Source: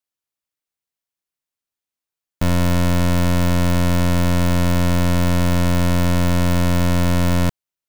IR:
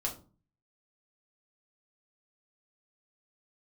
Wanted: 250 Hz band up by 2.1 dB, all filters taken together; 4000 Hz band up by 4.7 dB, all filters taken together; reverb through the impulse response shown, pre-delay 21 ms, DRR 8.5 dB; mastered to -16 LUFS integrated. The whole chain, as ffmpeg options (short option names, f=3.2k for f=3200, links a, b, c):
-filter_complex "[0:a]equalizer=f=250:t=o:g=3,equalizer=f=4k:t=o:g=6,asplit=2[a][b];[1:a]atrim=start_sample=2205,adelay=21[c];[b][c]afir=irnorm=-1:irlink=0,volume=-11.5dB[d];[a][d]amix=inputs=2:normalize=0"